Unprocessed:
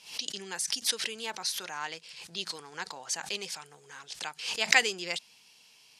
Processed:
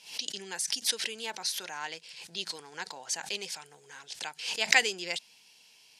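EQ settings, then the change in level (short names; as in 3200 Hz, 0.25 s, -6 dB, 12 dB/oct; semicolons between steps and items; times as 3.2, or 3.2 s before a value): low shelf 140 Hz -6.5 dB; bell 1200 Hz -8.5 dB 0.24 oct; 0.0 dB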